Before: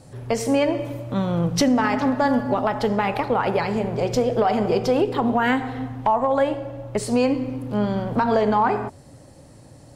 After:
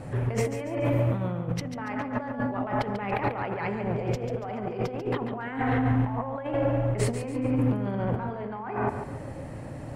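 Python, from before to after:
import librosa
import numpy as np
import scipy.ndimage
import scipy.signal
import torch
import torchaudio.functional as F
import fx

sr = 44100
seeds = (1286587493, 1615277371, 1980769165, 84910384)

y = fx.high_shelf_res(x, sr, hz=3200.0, db=-11.0, q=1.5)
y = fx.over_compress(y, sr, threshold_db=-31.0, ratio=-1.0)
y = fx.echo_feedback(y, sr, ms=142, feedback_pct=38, wet_db=-9)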